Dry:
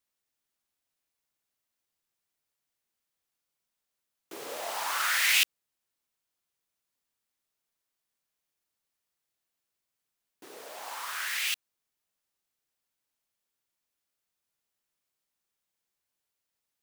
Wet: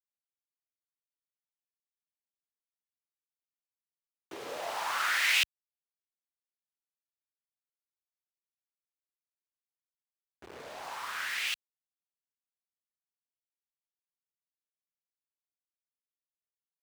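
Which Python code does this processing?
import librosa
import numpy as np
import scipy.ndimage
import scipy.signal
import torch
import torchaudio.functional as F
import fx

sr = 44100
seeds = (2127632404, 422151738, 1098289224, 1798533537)

y = fx.delta_hold(x, sr, step_db=-41.5)
y = scipy.signal.sosfilt(scipy.signal.butter(2, 61.0, 'highpass', fs=sr, output='sos'), y)
y = fx.high_shelf(y, sr, hz=6300.0, db=-11.5)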